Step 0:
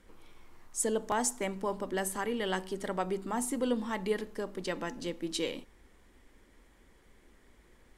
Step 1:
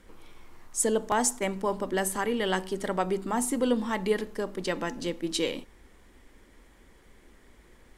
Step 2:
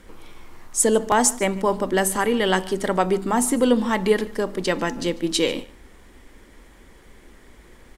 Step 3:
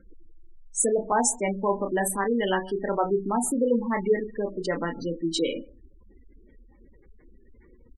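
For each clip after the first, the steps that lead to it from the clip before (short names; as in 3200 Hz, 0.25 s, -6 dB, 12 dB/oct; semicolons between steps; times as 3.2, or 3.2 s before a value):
attack slew limiter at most 530 dB/s; gain +5 dB
echo 0.146 s -21.5 dB; gain +7.5 dB
doubler 30 ms -5.5 dB; spectral gate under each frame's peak -15 dB strong; gain -5 dB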